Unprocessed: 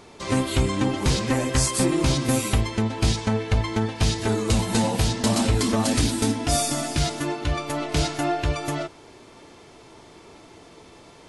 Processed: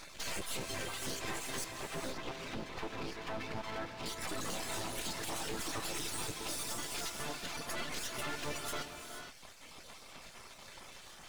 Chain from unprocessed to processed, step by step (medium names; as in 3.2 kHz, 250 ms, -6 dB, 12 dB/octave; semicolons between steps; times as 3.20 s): random holes in the spectrogram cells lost 25%; reverb removal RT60 1.3 s; spectral gate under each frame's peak -10 dB weak; compression, threshold -35 dBFS, peak gain reduction 12 dB; peak limiter -30 dBFS, peak gain reduction 10 dB; saturation -37.5 dBFS, distortion -14 dB; 1.64–4.06 s: Gaussian low-pass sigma 2.1 samples; half-wave rectifier; gated-style reverb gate 500 ms rising, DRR 5.5 dB; trim +8 dB